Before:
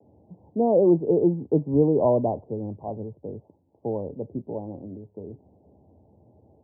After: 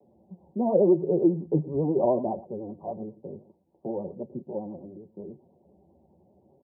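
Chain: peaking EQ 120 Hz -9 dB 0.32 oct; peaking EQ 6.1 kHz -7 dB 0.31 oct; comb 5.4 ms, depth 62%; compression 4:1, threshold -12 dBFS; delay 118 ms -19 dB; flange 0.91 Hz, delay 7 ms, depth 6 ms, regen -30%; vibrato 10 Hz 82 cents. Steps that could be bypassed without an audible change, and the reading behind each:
peaking EQ 6.1 kHz: input has nothing above 1.1 kHz

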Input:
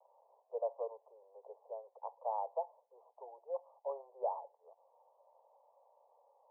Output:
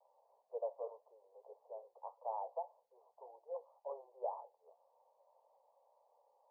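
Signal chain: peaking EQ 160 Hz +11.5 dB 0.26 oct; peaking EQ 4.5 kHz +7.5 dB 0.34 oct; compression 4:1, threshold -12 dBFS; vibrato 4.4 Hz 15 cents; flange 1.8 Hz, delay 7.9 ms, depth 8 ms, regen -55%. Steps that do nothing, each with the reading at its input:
peaking EQ 160 Hz: input has nothing below 360 Hz; peaking EQ 4.5 kHz: input has nothing above 1.2 kHz; compression, threshold -12 dBFS: peak at its input -25.0 dBFS

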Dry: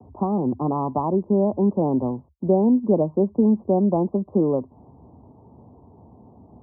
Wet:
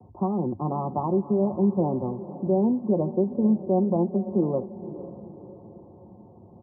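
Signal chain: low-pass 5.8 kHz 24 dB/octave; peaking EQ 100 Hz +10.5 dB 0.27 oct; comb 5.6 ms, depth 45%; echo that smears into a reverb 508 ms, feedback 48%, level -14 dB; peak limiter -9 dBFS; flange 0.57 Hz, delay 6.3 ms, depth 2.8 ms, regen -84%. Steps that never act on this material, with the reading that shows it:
low-pass 5.8 kHz: input has nothing above 1 kHz

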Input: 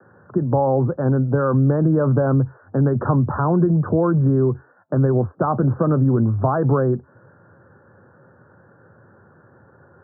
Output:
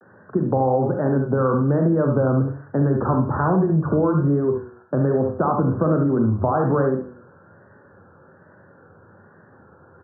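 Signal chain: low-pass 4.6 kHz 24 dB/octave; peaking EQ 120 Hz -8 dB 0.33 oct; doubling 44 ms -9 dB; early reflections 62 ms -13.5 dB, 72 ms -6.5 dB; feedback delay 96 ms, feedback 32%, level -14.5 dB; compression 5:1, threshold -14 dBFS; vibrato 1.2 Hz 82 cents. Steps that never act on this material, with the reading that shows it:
low-pass 4.6 kHz: input has nothing above 1.4 kHz

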